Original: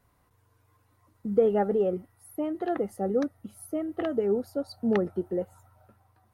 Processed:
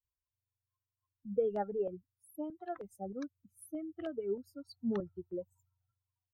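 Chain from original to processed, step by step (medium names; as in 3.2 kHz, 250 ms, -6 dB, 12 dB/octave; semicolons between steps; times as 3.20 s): expander on every frequency bin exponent 2; step-sequenced notch 3.2 Hz 270–5300 Hz; trim -6 dB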